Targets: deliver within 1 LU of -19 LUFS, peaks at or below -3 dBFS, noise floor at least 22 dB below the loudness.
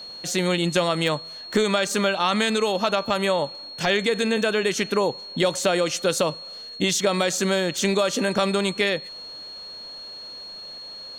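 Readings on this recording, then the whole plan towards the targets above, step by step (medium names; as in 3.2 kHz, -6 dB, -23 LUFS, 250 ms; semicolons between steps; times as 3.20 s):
steady tone 4.3 kHz; tone level -36 dBFS; loudness -23.0 LUFS; peak level -10.0 dBFS; loudness target -19.0 LUFS
-> band-stop 4.3 kHz, Q 30; trim +4 dB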